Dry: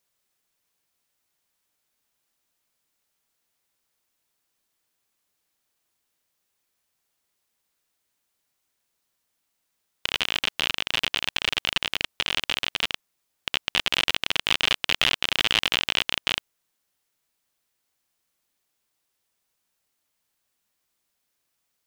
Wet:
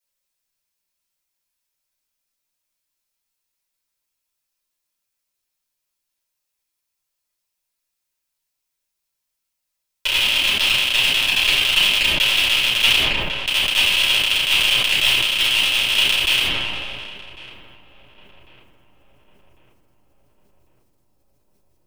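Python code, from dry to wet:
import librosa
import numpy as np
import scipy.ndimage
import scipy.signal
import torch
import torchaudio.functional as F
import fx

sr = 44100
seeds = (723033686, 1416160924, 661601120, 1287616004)

p1 = fx.high_shelf(x, sr, hz=2400.0, db=10.5)
p2 = fx.leveller(p1, sr, passes=3)
p3 = fx.rider(p2, sr, range_db=10, speed_s=0.5)
p4 = p3 + fx.echo_filtered(p3, sr, ms=1099, feedback_pct=59, hz=1100.0, wet_db=-13, dry=0)
p5 = fx.room_shoebox(p4, sr, seeds[0], volume_m3=180.0, walls='furnished', distance_m=5.4)
p6 = fx.sustainer(p5, sr, db_per_s=23.0)
y = p6 * 10.0 ** (-14.0 / 20.0)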